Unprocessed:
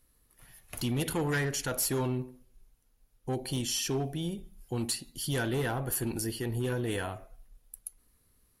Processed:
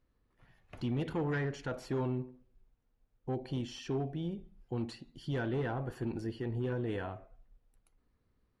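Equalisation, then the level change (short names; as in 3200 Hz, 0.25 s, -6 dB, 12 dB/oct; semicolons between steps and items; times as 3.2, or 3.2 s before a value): tape spacing loss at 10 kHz 31 dB; low shelf 63 Hz -6 dB; -1.5 dB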